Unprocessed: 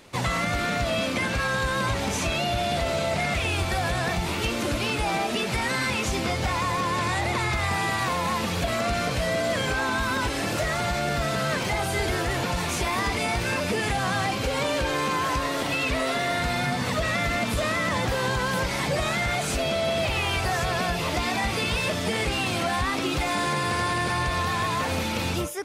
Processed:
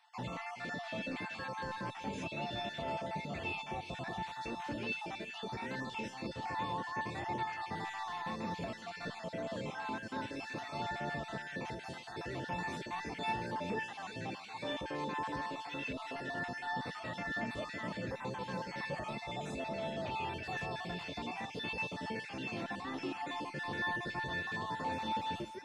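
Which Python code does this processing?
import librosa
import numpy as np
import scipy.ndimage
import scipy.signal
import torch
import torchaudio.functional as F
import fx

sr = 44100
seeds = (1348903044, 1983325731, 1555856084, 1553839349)

p1 = fx.spec_dropout(x, sr, seeds[0], share_pct=39)
p2 = scipy.signal.sosfilt(scipy.signal.butter(2, 170.0, 'highpass', fs=sr, output='sos'), p1)
p3 = fx.peak_eq(p2, sr, hz=1300.0, db=-7.0, octaves=2.8)
p4 = 10.0 ** (-30.0 / 20.0) * np.tanh(p3 / 10.0 ** (-30.0 / 20.0))
p5 = p3 + F.gain(torch.from_numpy(p4), -5.0).numpy()
p6 = fx.spacing_loss(p5, sr, db_at_10k=24)
p7 = fx.comb_fb(p6, sr, f0_hz=890.0, decay_s=0.37, harmonics='all', damping=0.0, mix_pct=90)
p8 = p7 + fx.echo_feedback(p7, sr, ms=381, feedback_pct=30, wet_db=-15, dry=0)
y = F.gain(torch.from_numpy(p8), 9.5).numpy()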